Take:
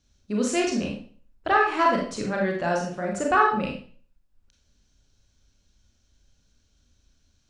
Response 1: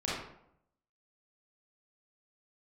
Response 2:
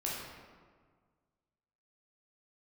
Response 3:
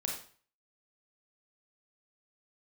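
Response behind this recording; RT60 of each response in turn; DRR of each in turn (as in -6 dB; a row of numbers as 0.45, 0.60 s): 3; 0.75, 1.7, 0.45 s; -7.5, -5.5, -1.0 dB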